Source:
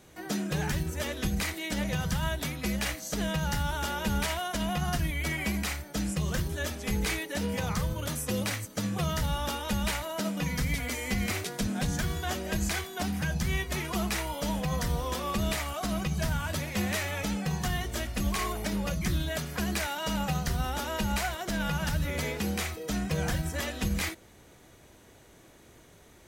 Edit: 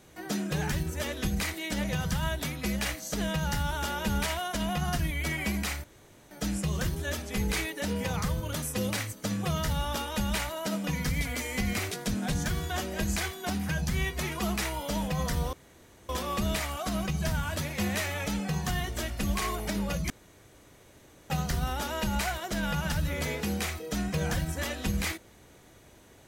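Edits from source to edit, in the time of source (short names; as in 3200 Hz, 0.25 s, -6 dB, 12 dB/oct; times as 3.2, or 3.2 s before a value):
5.84 insert room tone 0.47 s
15.06 insert room tone 0.56 s
19.07–20.27 room tone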